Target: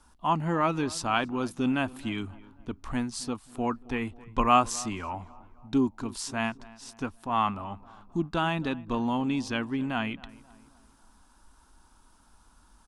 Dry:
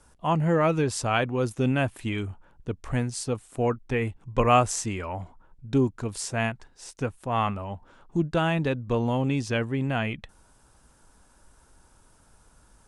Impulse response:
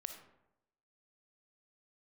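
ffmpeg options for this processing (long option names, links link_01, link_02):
-filter_complex "[0:a]equalizer=frequency=125:width_type=o:width=1:gain=-12,equalizer=frequency=250:width_type=o:width=1:gain=5,equalizer=frequency=500:width_type=o:width=1:gain=-11,equalizer=frequency=1000:width_type=o:width=1:gain=5,equalizer=frequency=2000:width_type=o:width=1:gain=-5,equalizer=frequency=4000:width_type=o:width=1:gain=3,equalizer=frequency=8000:width_type=o:width=1:gain=-5,asplit=2[link_01][link_02];[link_02]adelay=267,lowpass=frequency=1900:poles=1,volume=-20dB,asplit=2[link_03][link_04];[link_04]adelay=267,lowpass=frequency=1900:poles=1,volume=0.5,asplit=2[link_05][link_06];[link_06]adelay=267,lowpass=frequency=1900:poles=1,volume=0.5,asplit=2[link_07][link_08];[link_08]adelay=267,lowpass=frequency=1900:poles=1,volume=0.5[link_09];[link_01][link_03][link_05][link_07][link_09]amix=inputs=5:normalize=0"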